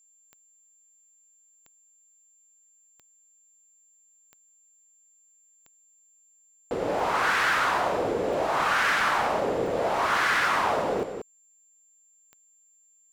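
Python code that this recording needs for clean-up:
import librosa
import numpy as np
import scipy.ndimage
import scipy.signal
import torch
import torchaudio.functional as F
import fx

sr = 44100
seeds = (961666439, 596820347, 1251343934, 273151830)

y = fx.fix_declip(x, sr, threshold_db=-18.0)
y = fx.fix_declick_ar(y, sr, threshold=10.0)
y = fx.notch(y, sr, hz=7300.0, q=30.0)
y = fx.fix_echo_inverse(y, sr, delay_ms=185, level_db=-8.0)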